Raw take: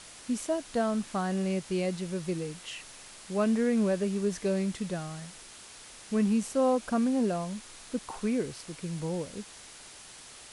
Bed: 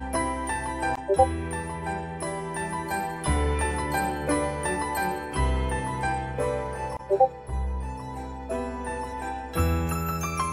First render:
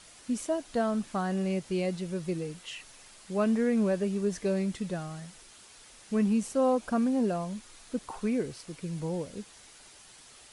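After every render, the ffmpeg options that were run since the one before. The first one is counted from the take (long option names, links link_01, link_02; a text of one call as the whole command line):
ffmpeg -i in.wav -af "afftdn=noise_reduction=6:noise_floor=-49" out.wav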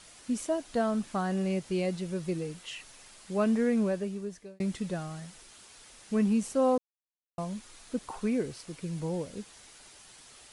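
ffmpeg -i in.wav -filter_complex "[0:a]asplit=4[link_01][link_02][link_03][link_04];[link_01]atrim=end=4.6,asetpts=PTS-STARTPTS,afade=type=out:start_time=3.71:duration=0.89[link_05];[link_02]atrim=start=4.6:end=6.78,asetpts=PTS-STARTPTS,afade=type=in:duration=0.004:curve=hsin,afade=type=out:start_time=2.176:duration=0.004:curve=hsin[link_06];[link_03]atrim=start=6.78:end=7.38,asetpts=PTS-STARTPTS,volume=0[link_07];[link_04]atrim=start=7.38,asetpts=PTS-STARTPTS,afade=type=in:duration=0.004:curve=hsin[link_08];[link_05][link_06][link_07][link_08]concat=n=4:v=0:a=1" out.wav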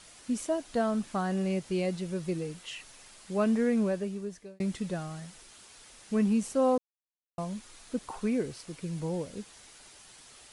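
ffmpeg -i in.wav -af anull out.wav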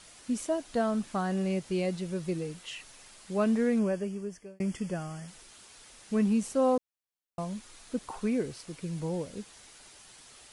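ffmpeg -i in.wav -filter_complex "[0:a]asettb=1/sr,asplit=3[link_01][link_02][link_03];[link_01]atrim=end=3.794[link_04];[link_02]atrim=start=3.79:end=5.28,asetpts=PTS-STARTPTS,afade=type=in:duration=0.004:curve=qsin,afade=type=out:start_time=1.486:duration=0.004:curve=qsin,asuperstop=centerf=3900:order=8:qfactor=3.8[link_05];[link_03]atrim=start=5.276[link_06];[link_04][link_05]acrossfade=duration=0.004:curve1=hsin:curve2=qsin[link_07];[link_07][link_06]acrossfade=duration=0.004:curve1=qsin:curve2=hsin" out.wav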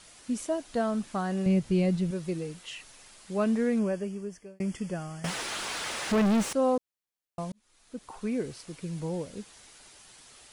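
ffmpeg -i in.wav -filter_complex "[0:a]asettb=1/sr,asplit=3[link_01][link_02][link_03];[link_01]atrim=end=1.464[link_04];[link_02]atrim=start=1.46:end=2.11,asetpts=PTS-STARTPTS,afade=type=in:duration=0.004:curve=qsin,afade=type=out:start_time=0.646:duration=0.004:curve=qsin,bass=frequency=250:gain=11,treble=frequency=4000:gain=-2[link_05];[link_03]atrim=start=2.106[link_06];[link_04][link_05]acrossfade=duration=0.004:curve1=hsin:curve2=qsin[link_07];[link_07][link_06]acrossfade=duration=0.004:curve1=qsin:curve2=hsin,asettb=1/sr,asplit=3[link_08][link_09][link_10];[link_08]atrim=end=5.244[link_11];[link_09]atrim=start=5.24:end=6.53,asetpts=PTS-STARTPTS,afade=type=in:duration=0.004:curve=qsin,afade=type=out:start_time=1.286:duration=0.004:curve=qsin,asplit=2[link_12][link_13];[link_13]highpass=frequency=720:poles=1,volume=37dB,asoftclip=type=tanh:threshold=-17.5dB[link_14];[link_12][link_14]amix=inputs=2:normalize=0,lowpass=frequency=1800:poles=1,volume=-6dB[link_15];[link_10]atrim=start=6.526[link_16];[link_11][link_15]acrossfade=duration=0.004:curve1=hsin:curve2=qsin[link_17];[link_17][link_16]acrossfade=duration=0.004:curve1=qsin:curve2=hsin,asplit=2[link_18][link_19];[link_18]atrim=end=7.52,asetpts=PTS-STARTPTS,afade=type=out:start_time=7.516:duration=0.004:curve=hsin[link_20];[link_19]atrim=start=7.52,asetpts=PTS-STARTPTS,afade=type=in:duration=0.97[link_21];[link_20][link_21]concat=n=2:v=0:a=1" out.wav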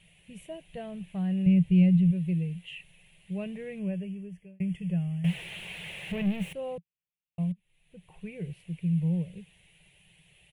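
ffmpeg -i in.wav -af "firequalizer=gain_entry='entry(120,0);entry(170,12);entry(240,-22);entry(340,-11);entry(560,-9);entry(1300,-24);entry(1900,-6);entry(2700,2);entry(4900,-28);entry(11000,-9)':delay=0.05:min_phase=1" out.wav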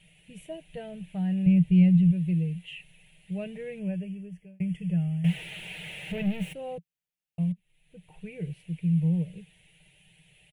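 ffmpeg -i in.wav -af "bandreject=frequency=1100:width=5.1,aecho=1:1:6.5:0.38" out.wav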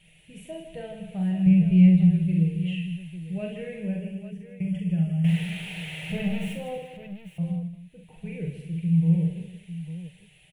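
ffmpeg -i in.wav -af "aecho=1:1:43|67|158|239|351|849:0.631|0.447|0.376|0.237|0.141|0.266" out.wav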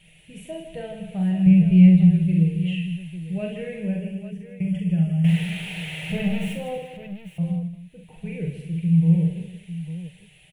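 ffmpeg -i in.wav -af "volume=3.5dB" out.wav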